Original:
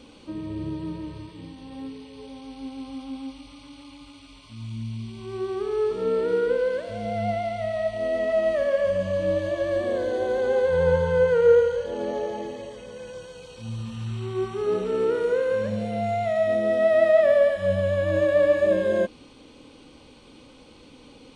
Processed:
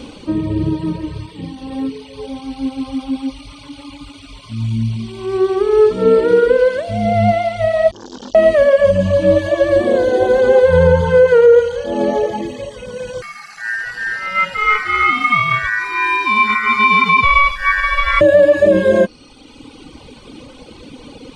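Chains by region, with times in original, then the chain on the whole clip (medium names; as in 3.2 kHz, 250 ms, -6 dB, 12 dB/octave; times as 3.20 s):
7.91–8.35 s: CVSD coder 32 kbps + brick-wall FIR band-stop 340–2900 Hz + transformer saturation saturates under 1.2 kHz
13.22–18.21 s: ring modulator 1.7 kHz + bass shelf 100 Hz +10 dB
whole clip: reverb removal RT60 1.5 s; bass shelf 480 Hz +3 dB; loudness maximiser +15 dB; trim -1 dB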